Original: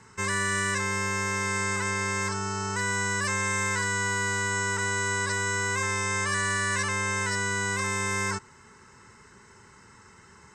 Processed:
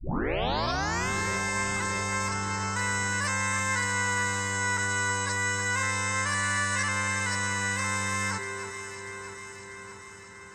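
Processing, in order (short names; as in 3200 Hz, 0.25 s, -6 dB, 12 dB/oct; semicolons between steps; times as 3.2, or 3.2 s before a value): tape start at the beginning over 1.09 s; echo with dull and thin repeats by turns 0.321 s, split 2300 Hz, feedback 79%, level -8.5 dB; gain -1 dB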